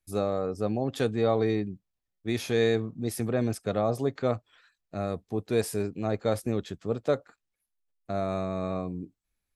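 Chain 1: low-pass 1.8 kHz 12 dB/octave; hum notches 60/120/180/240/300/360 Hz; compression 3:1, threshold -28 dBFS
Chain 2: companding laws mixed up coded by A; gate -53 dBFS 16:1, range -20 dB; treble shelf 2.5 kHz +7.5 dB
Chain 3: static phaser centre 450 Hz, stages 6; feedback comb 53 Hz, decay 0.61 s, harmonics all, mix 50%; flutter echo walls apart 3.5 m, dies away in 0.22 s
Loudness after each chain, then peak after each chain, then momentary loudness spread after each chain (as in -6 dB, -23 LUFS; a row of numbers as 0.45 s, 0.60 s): -34.0 LUFS, -30.0 LUFS, -37.0 LUFS; -18.0 dBFS, -11.0 dBFS, -18.5 dBFS; 7 LU, 10 LU, 9 LU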